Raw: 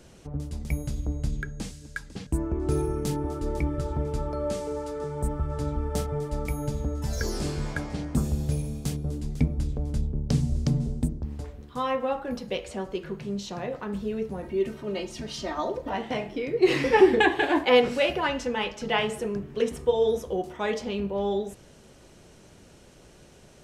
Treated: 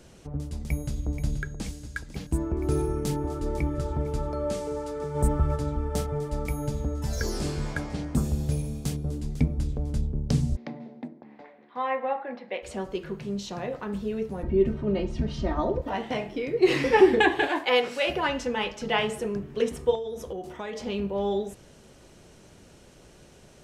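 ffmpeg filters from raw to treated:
-filter_complex "[0:a]asplit=2[a][b];[b]afade=t=in:st=0.63:d=0.01,afade=t=out:st=1.07:d=0.01,aecho=0:1:480|960|1440|1920|2400|2880|3360|3840|4320|4800|5280|5760:0.354813|0.283851|0.227081|0.181664|0.145332|0.116265|0.0930122|0.0744098|0.0595278|0.0476222|0.0380978|0.0304782[c];[a][c]amix=inputs=2:normalize=0,asplit=3[d][e][f];[d]afade=t=out:st=5.14:d=0.02[g];[e]acontrast=28,afade=t=in:st=5.14:d=0.02,afade=t=out:st=5.55:d=0.02[h];[f]afade=t=in:st=5.55:d=0.02[i];[g][h][i]amix=inputs=3:normalize=0,asplit=3[j][k][l];[j]afade=t=out:st=10.55:d=0.02[m];[k]highpass=f=270:w=0.5412,highpass=f=270:w=1.3066,equalizer=f=290:t=q:w=4:g=-5,equalizer=f=420:t=q:w=4:g=-9,equalizer=f=780:t=q:w=4:g=4,equalizer=f=1.3k:t=q:w=4:g=-5,equalizer=f=2k:t=q:w=4:g=7,equalizer=f=3k:t=q:w=4:g=-7,lowpass=f=3.2k:w=0.5412,lowpass=f=3.2k:w=1.3066,afade=t=in:st=10.55:d=0.02,afade=t=out:st=12.62:d=0.02[n];[l]afade=t=in:st=12.62:d=0.02[o];[m][n][o]amix=inputs=3:normalize=0,asettb=1/sr,asplit=3[p][q][r];[p]atrim=end=14.434[s];[q]atrim=start=14.43:end=15.82,asetpts=PTS-STARTPTS,afade=t=in:d=0.004:c=qsin,afade=t=out:st=1.386:d=0.004:c=qsin,aemphasis=mode=reproduction:type=riaa[t];[r]atrim=start=15.816[u];[s][t]acrossfade=d=0.004:c1=hsin:c2=qsin[v];[v][u]acrossfade=d=0.004:c1=qsin:c2=hsin,asettb=1/sr,asplit=3[w][x][y];[w]atrim=end=17.484[z];[x]atrim=start=17.48:end=18.07,asetpts=PTS-STARTPTS,afade=t=in:d=0.004:c=qsin,afade=t=out:st=0.586:d=0.004:c=qsin,highpass=f=680:p=1[aa];[y]atrim=start=18.066[ab];[z][aa]acrossfade=d=0.004:c1=hsin:c2=qsin[ac];[ac][ab]acrossfade=d=0.004:c1=qsin:c2=hsin,asettb=1/sr,asplit=3[ad][ae][af];[ad]atrim=end=19.954[ag];[ae]atrim=start=19.95:end=20.82,asetpts=PTS-STARTPTS,afade=t=in:d=0.004:c=qsin,afade=t=out:st=0.866:d=0.004:c=qsin,acompressor=threshold=-30dB:ratio=12:attack=3.2:release=140:knee=1:detection=peak[ah];[af]atrim=start=20.816[ai];[ag][ah]acrossfade=d=0.004:c1=hsin:c2=qsin[aj];[aj][ai]acrossfade=d=0.004:c1=qsin:c2=hsin"

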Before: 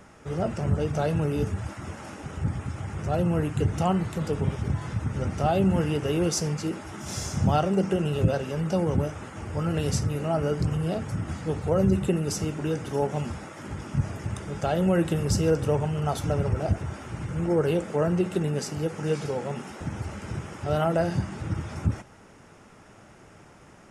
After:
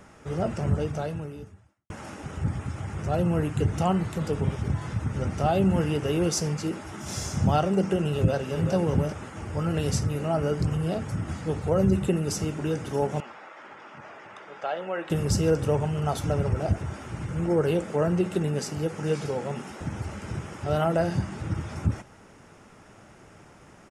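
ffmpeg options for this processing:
-filter_complex "[0:a]asplit=2[a][b];[b]afade=t=in:st=8.12:d=0.01,afade=t=out:st=8.73:d=0.01,aecho=0:1:390|780:0.446684|0.0446684[c];[a][c]amix=inputs=2:normalize=0,asettb=1/sr,asplit=3[d][e][f];[d]atrim=end=13.204[g];[e]atrim=start=13.2:end=15.1,asetpts=PTS-STARTPTS,afade=t=in:d=0.004:c=qsin,afade=t=out:st=1.896:d=0.004:c=qsin,highpass=650,lowpass=2.8k[h];[f]atrim=start=15.096[i];[g][h]acrossfade=d=0.004:c1=hsin:c2=qsin[j];[j][i]acrossfade=d=0.004:c1=qsin:c2=hsin,asplit=2[k][l];[k]atrim=end=1.9,asetpts=PTS-STARTPTS,afade=t=out:st=0.74:d=1.16:c=qua[m];[l]atrim=start=1.9,asetpts=PTS-STARTPTS,afade=t=in:d=0.004:c=hsin[n];[m][n]concat=n=2:v=0:a=1"

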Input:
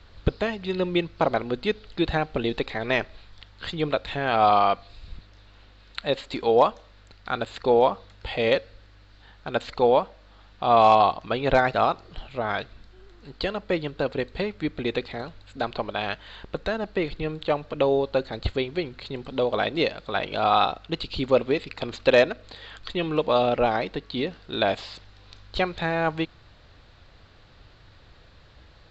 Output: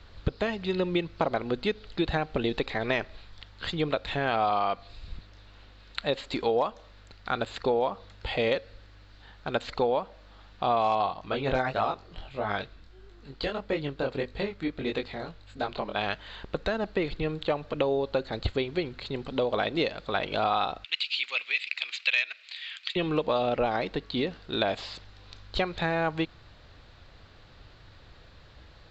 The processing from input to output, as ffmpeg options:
-filter_complex "[0:a]asplit=3[a][b][c];[a]afade=t=out:st=11.06:d=0.02[d];[b]flanger=delay=19.5:depth=4.2:speed=1.6,afade=t=in:st=11.06:d=0.02,afade=t=out:st=15.95:d=0.02[e];[c]afade=t=in:st=15.95:d=0.02[f];[d][e][f]amix=inputs=3:normalize=0,asettb=1/sr,asplit=3[g][h][i];[g]atrim=end=20.844[j];[h]atrim=start=20.84:end=22.96,asetpts=PTS-STARTPTS,afade=t=in:d=0.004:c=qsin,afade=t=out:st=2.116:d=0.004:c=qsin,highpass=f=2.4k:t=q:w=3.4[k];[i]atrim=start=22.956[l];[j][k]acrossfade=d=0.004:c1=hsin:c2=qsin[m];[m][l]acrossfade=d=0.004:c1=qsin:c2=hsin,acompressor=threshold=-23dB:ratio=4"

